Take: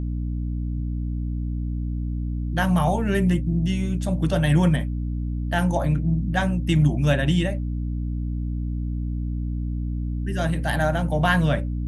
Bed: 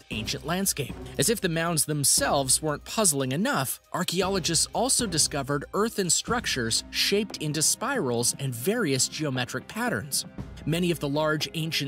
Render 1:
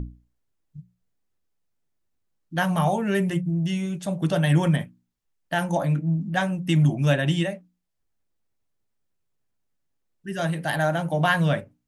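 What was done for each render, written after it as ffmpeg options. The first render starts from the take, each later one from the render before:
ffmpeg -i in.wav -af "bandreject=frequency=60:width_type=h:width=6,bandreject=frequency=120:width_type=h:width=6,bandreject=frequency=180:width_type=h:width=6,bandreject=frequency=240:width_type=h:width=6,bandreject=frequency=300:width_type=h:width=6" out.wav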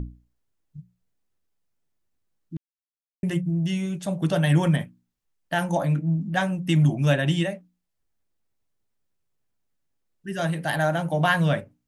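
ffmpeg -i in.wav -filter_complex "[0:a]asplit=3[link_01][link_02][link_03];[link_01]atrim=end=2.57,asetpts=PTS-STARTPTS,afade=type=out:start_time=2.566:duration=0.004:curve=hsin[link_04];[link_02]atrim=start=2.57:end=3.23,asetpts=PTS-STARTPTS,volume=0[link_05];[link_03]atrim=start=3.23,asetpts=PTS-STARTPTS,afade=type=in:duration=0.004:curve=hsin[link_06];[link_04][link_05][link_06]concat=n=3:v=0:a=1" out.wav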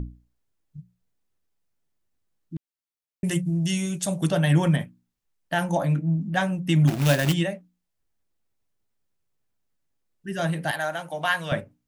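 ffmpeg -i in.wav -filter_complex "[0:a]asettb=1/sr,asplit=3[link_01][link_02][link_03];[link_01]atrim=end=3.244[link_04];[link_02]atrim=start=3.24:end=4.29,asetpts=PTS-STARTPTS,afade=type=in:duration=0.004:curve=qsin,afade=type=out:start_time=1.046:duration=0.004:curve=qsin,equalizer=frequency=8600:width=0.51:gain=13.5[link_05];[link_03]atrim=start=4.286[link_06];[link_04][link_05]acrossfade=duration=0.004:curve1=hsin:curve2=qsin[link_07];[link_07][link_06]acrossfade=duration=0.004:curve1=qsin:curve2=hsin,asplit=3[link_08][link_09][link_10];[link_08]afade=type=out:start_time=6.87:duration=0.02[link_11];[link_09]acrusher=bits=2:mode=log:mix=0:aa=0.000001,afade=type=in:start_time=6.87:duration=0.02,afade=type=out:start_time=7.32:duration=0.02[link_12];[link_10]afade=type=in:start_time=7.32:duration=0.02[link_13];[link_11][link_12][link_13]amix=inputs=3:normalize=0,asettb=1/sr,asplit=3[link_14][link_15][link_16];[link_14]atrim=end=10.714[link_17];[link_15]atrim=start=10.71:end=11.52,asetpts=PTS-STARTPTS,afade=type=in:duration=0.004:curve=qsin,afade=type=out:start_time=0.806:duration=0.004:curve=qsin,highpass=frequency=1000:poles=1[link_18];[link_16]atrim=start=11.516[link_19];[link_17][link_18]acrossfade=duration=0.004:curve1=hsin:curve2=qsin[link_20];[link_20][link_19]acrossfade=duration=0.004:curve1=qsin:curve2=hsin" out.wav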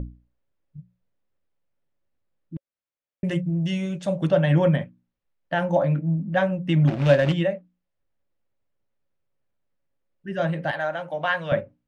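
ffmpeg -i in.wav -af "lowpass=2900,equalizer=frequency=550:width=7.8:gain=11" out.wav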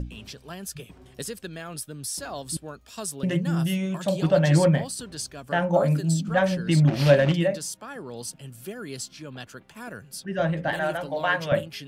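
ffmpeg -i in.wav -i bed.wav -filter_complex "[1:a]volume=-11dB[link_01];[0:a][link_01]amix=inputs=2:normalize=0" out.wav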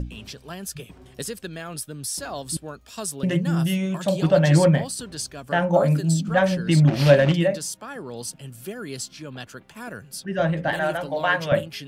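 ffmpeg -i in.wav -af "volume=2.5dB" out.wav

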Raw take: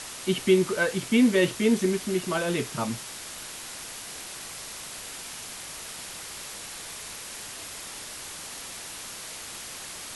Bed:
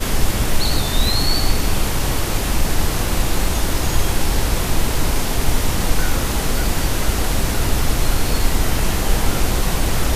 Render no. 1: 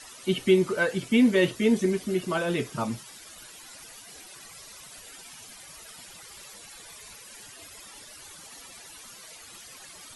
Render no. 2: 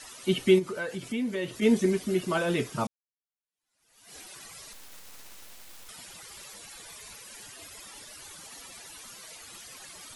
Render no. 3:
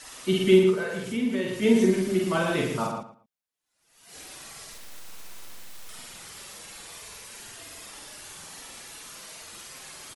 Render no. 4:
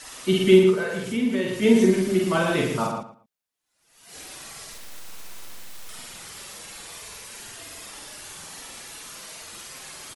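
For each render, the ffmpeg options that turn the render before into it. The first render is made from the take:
ffmpeg -i in.wav -af "afftdn=noise_reduction=14:noise_floor=-40" out.wav
ffmpeg -i in.wav -filter_complex "[0:a]asplit=3[link_01][link_02][link_03];[link_01]afade=type=out:start_time=0.58:duration=0.02[link_04];[link_02]acompressor=threshold=-36dB:ratio=2:attack=3.2:release=140:knee=1:detection=peak,afade=type=in:start_time=0.58:duration=0.02,afade=type=out:start_time=1.61:duration=0.02[link_05];[link_03]afade=type=in:start_time=1.61:duration=0.02[link_06];[link_04][link_05][link_06]amix=inputs=3:normalize=0,asettb=1/sr,asplit=3[link_07][link_08][link_09];[link_07]atrim=end=4.734[link_10];[link_08]atrim=start=4.73:end=5.89,asetpts=PTS-STARTPTS,afade=type=in:duration=0.004:curve=qsin,afade=type=out:start_time=1.156:duration=0.004:curve=qsin,aeval=exprs='abs(val(0))':channel_layout=same[link_11];[link_09]atrim=start=5.886[link_12];[link_10][link_11]acrossfade=duration=0.004:curve1=hsin:curve2=qsin[link_13];[link_13][link_12]acrossfade=duration=0.004:curve1=qsin:curve2=hsin,asplit=2[link_14][link_15];[link_14]atrim=end=2.87,asetpts=PTS-STARTPTS,afade=type=out:start_time=2.866:duration=0.004:curve=hsin[link_16];[link_15]atrim=start=2.87,asetpts=PTS-STARTPTS,afade=type=in:duration=1.28:curve=exp[link_17];[link_16][link_17]concat=n=2:v=0:a=1" out.wav
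ffmpeg -i in.wav -filter_complex "[0:a]asplit=2[link_01][link_02];[link_02]adelay=48,volume=-2dB[link_03];[link_01][link_03]amix=inputs=2:normalize=0,asplit=2[link_04][link_05];[link_05]adelay=114,lowpass=frequency=3000:poles=1,volume=-4.5dB,asplit=2[link_06][link_07];[link_07]adelay=114,lowpass=frequency=3000:poles=1,volume=0.21,asplit=2[link_08][link_09];[link_09]adelay=114,lowpass=frequency=3000:poles=1,volume=0.21[link_10];[link_04][link_06][link_08][link_10]amix=inputs=4:normalize=0" out.wav
ffmpeg -i in.wav -af "volume=3dB" out.wav

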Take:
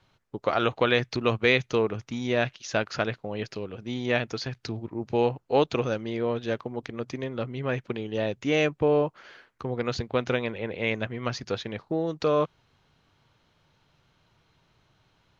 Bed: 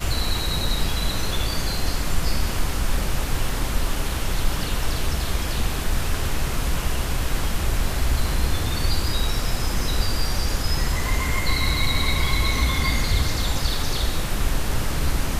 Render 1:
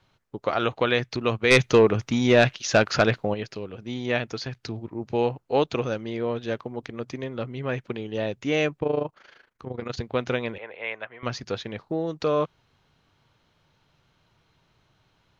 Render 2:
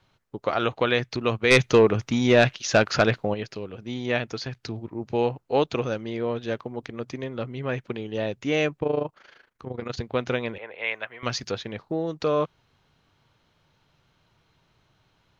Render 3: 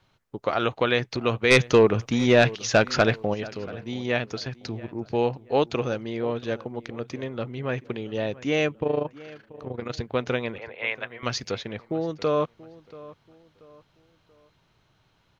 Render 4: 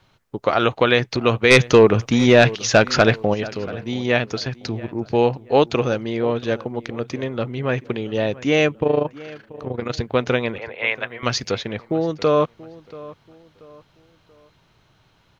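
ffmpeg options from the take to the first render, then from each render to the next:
ffmpeg -i in.wav -filter_complex "[0:a]asplit=3[link_01][link_02][link_03];[link_01]afade=type=out:start_time=1.5:duration=0.02[link_04];[link_02]aeval=exprs='0.447*sin(PI/2*1.78*val(0)/0.447)':channel_layout=same,afade=type=in:start_time=1.5:duration=0.02,afade=type=out:start_time=3.33:duration=0.02[link_05];[link_03]afade=type=in:start_time=3.33:duration=0.02[link_06];[link_04][link_05][link_06]amix=inputs=3:normalize=0,asettb=1/sr,asplit=3[link_07][link_08][link_09];[link_07]atrim=end=8.794[link_10];[link_08]atrim=start=8.79:end=9.98,asetpts=PTS-STARTPTS,afade=type=in:duration=0.004:curve=qsin,afade=type=out:start_time=1.186:duration=0.004:curve=qsin,tremolo=f=26:d=0.788[link_11];[link_09]atrim=start=9.976[link_12];[link_10][link_11]acrossfade=duration=0.004:curve1=hsin:curve2=qsin[link_13];[link_13][link_12]acrossfade=duration=0.004:curve1=qsin:curve2=hsin,asettb=1/sr,asplit=3[link_14][link_15][link_16];[link_14]atrim=end=10.584[link_17];[link_15]atrim=start=10.58:end=11.23,asetpts=PTS-STARTPTS,afade=type=in:duration=0.004:curve=qsin,afade=type=out:start_time=0.646:duration=0.004:curve=qsin,acrossover=split=550 3000:gain=0.0708 1 0.0708[link_18][link_19][link_20];[link_18][link_19][link_20]amix=inputs=3:normalize=0[link_21];[link_16]atrim=start=11.226[link_22];[link_17][link_21]acrossfade=duration=0.004:curve1=hsin:curve2=qsin[link_23];[link_23][link_22]acrossfade=duration=0.004:curve1=qsin:curve2=hsin" out.wav
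ffmpeg -i in.wav -filter_complex "[0:a]asettb=1/sr,asplit=3[link_01][link_02][link_03];[link_01]atrim=end=10.784[link_04];[link_02]atrim=start=10.78:end=11.51,asetpts=PTS-STARTPTS,afade=type=in:duration=0.004:curve=qsin,afade=type=out:start_time=0.726:duration=0.004:curve=qsin,highshelf=frequency=2400:gain=8.5[link_05];[link_03]atrim=start=11.506[link_06];[link_04][link_05]acrossfade=duration=0.004:curve1=hsin:curve2=qsin[link_07];[link_07][link_06]acrossfade=duration=0.004:curve1=qsin:curve2=hsin" out.wav
ffmpeg -i in.wav -filter_complex "[0:a]asplit=2[link_01][link_02];[link_02]adelay=683,lowpass=frequency=2500:poles=1,volume=-19dB,asplit=2[link_03][link_04];[link_04]adelay=683,lowpass=frequency=2500:poles=1,volume=0.37,asplit=2[link_05][link_06];[link_06]adelay=683,lowpass=frequency=2500:poles=1,volume=0.37[link_07];[link_01][link_03][link_05][link_07]amix=inputs=4:normalize=0" out.wav
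ffmpeg -i in.wav -af "volume=6.5dB,alimiter=limit=-2dB:level=0:latency=1" out.wav

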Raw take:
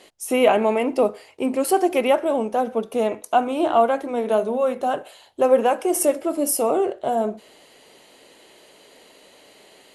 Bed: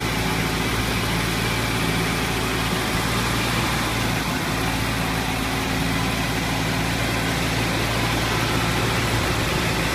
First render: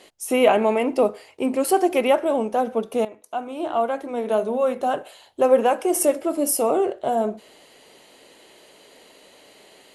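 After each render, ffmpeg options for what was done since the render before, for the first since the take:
ffmpeg -i in.wav -filter_complex "[0:a]asplit=2[link_01][link_02];[link_01]atrim=end=3.05,asetpts=PTS-STARTPTS,afade=type=out:start_time=3.046:duration=0.004:curve=hsin:silence=0.149624[link_03];[link_02]atrim=start=3.05,asetpts=PTS-STARTPTS,afade=type=in:duration=1.59:silence=0.149624[link_04];[link_03][link_04]concat=n=2:v=0:a=1" out.wav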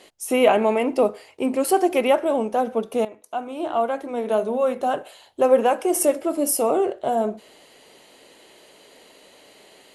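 ffmpeg -i in.wav -af anull out.wav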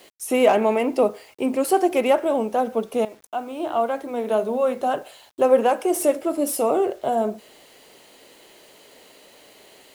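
ffmpeg -i in.wav -filter_complex "[0:a]acrossover=split=600|1100[link_01][link_02][link_03];[link_03]asoftclip=type=hard:threshold=-25dB[link_04];[link_01][link_02][link_04]amix=inputs=3:normalize=0,acrusher=bits=8:mix=0:aa=0.000001" out.wav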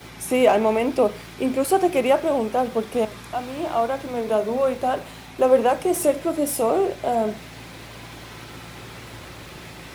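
ffmpeg -i in.wav -i bed.wav -filter_complex "[1:a]volume=-18dB[link_01];[0:a][link_01]amix=inputs=2:normalize=0" out.wav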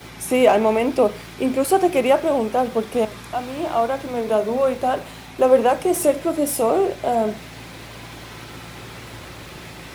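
ffmpeg -i in.wav -af "volume=2dB" out.wav

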